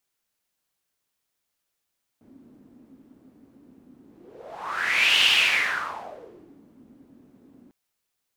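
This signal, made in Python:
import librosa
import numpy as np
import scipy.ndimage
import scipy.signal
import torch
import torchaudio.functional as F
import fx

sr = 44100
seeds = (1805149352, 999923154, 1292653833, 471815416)

y = fx.whoosh(sr, seeds[0], length_s=5.5, peak_s=3.03, rise_s=1.28, fall_s=1.48, ends_hz=260.0, peak_hz=2900.0, q=5.6, swell_db=34.5)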